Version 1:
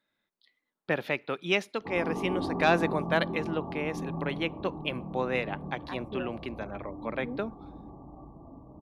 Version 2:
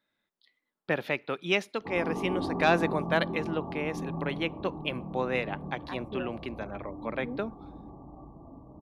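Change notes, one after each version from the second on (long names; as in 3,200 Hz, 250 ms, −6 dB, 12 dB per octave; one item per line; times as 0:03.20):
nothing changed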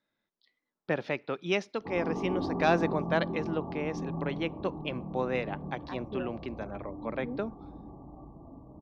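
speech: add low-pass with resonance 5,700 Hz, resonance Q 3.1
master: add high-shelf EQ 2,100 Hz −11 dB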